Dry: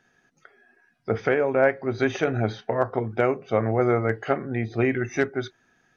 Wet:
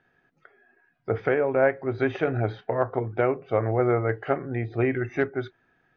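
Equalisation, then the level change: air absorption 310 m; bell 220 Hz -9.5 dB 0.22 oct; 0.0 dB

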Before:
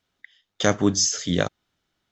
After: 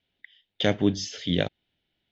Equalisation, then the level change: ladder low-pass 3800 Hz, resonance 40%; bell 1200 Hz -14.5 dB 0.67 oct; +6.5 dB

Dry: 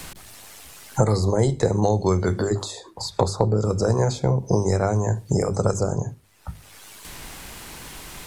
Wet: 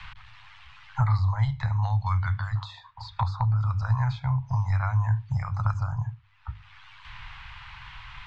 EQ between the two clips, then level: Chebyshev band-stop 120–970 Hz, order 3; LPF 3200 Hz 24 dB/oct; 0.0 dB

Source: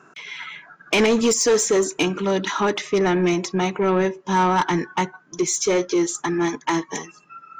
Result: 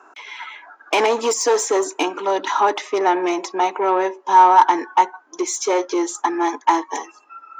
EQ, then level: elliptic high-pass 280 Hz, stop band 60 dB; bell 870 Hz +12 dB 0.78 oct; -1.0 dB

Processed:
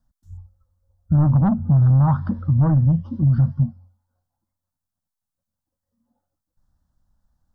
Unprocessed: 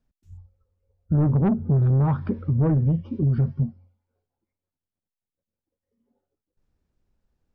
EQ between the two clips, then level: fixed phaser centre 1000 Hz, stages 4; +6.0 dB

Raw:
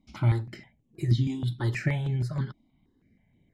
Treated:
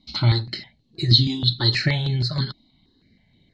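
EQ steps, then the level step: synth low-pass 4200 Hz, resonance Q 15; high shelf 3300 Hz +7.5 dB; notch 2400 Hz, Q 16; +5.0 dB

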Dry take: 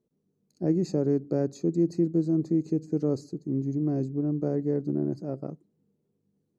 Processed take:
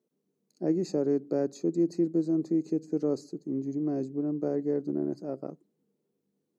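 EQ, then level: HPF 250 Hz 12 dB/oct; 0.0 dB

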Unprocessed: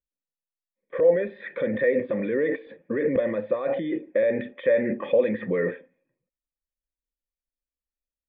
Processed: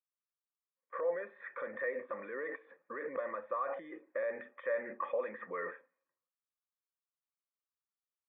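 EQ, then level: ladder band-pass 1300 Hz, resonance 65%; tilt -4.5 dB/oct; +6.0 dB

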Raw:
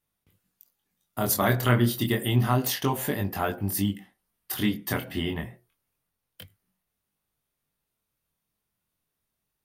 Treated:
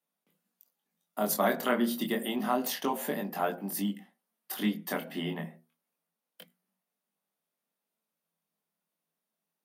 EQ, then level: rippled Chebyshev high-pass 160 Hz, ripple 6 dB; notches 60/120/180/240 Hz; 0.0 dB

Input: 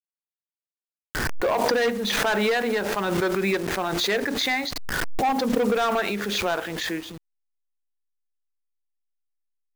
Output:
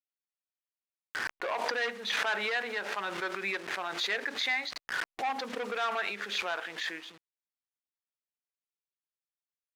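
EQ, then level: band-pass 2100 Hz, Q 0.7; -4.0 dB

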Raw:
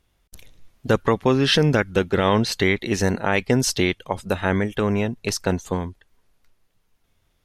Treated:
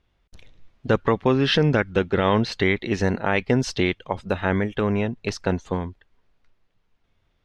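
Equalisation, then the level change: LPF 3900 Hz 12 dB/oct; -1.0 dB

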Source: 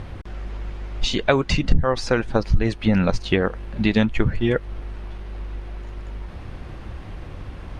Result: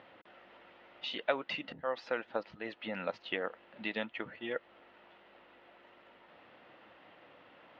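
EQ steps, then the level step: speaker cabinet 370–2500 Hz, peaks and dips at 390 Hz -8 dB, 780 Hz -4 dB, 1100 Hz -8 dB, 1600 Hz -8 dB, 2300 Hz -9 dB; tilt +3.5 dB/oct; -6.5 dB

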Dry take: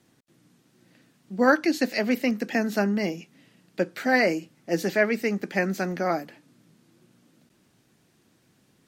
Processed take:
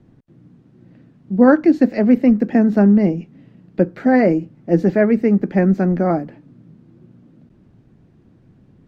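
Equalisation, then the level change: tilt -4.5 dB/oct; dynamic EQ 3300 Hz, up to -4 dB, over -45 dBFS, Q 1.2; high shelf 6100 Hz -9 dB; +3.5 dB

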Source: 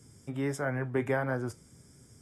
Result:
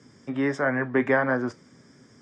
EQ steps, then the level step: speaker cabinet 180–5700 Hz, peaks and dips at 250 Hz +5 dB, 580 Hz +3 dB, 1100 Hz +6 dB, 1800 Hz +8 dB; +5.5 dB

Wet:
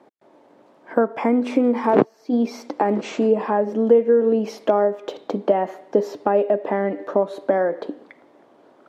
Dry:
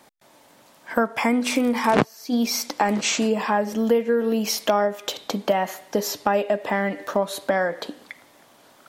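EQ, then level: band-pass 440 Hz, Q 0.62; bell 360 Hz +6.5 dB 1 oct; +1.5 dB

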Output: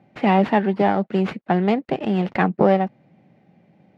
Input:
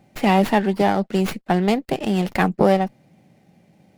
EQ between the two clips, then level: HPF 100 Hz; LPF 2600 Hz 12 dB/oct; 0.0 dB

